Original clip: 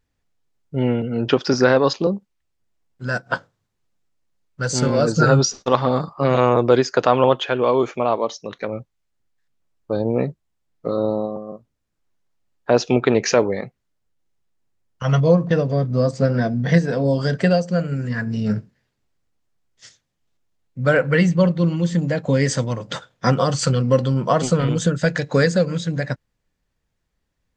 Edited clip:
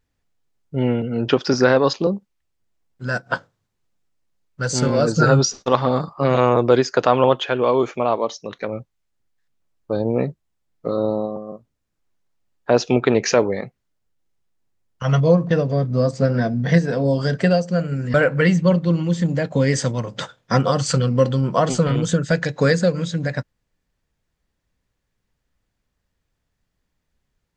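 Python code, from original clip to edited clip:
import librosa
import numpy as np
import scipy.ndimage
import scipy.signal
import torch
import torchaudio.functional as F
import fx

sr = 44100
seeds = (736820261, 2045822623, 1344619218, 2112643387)

y = fx.edit(x, sr, fx.cut(start_s=18.14, length_s=2.73), tone=tone)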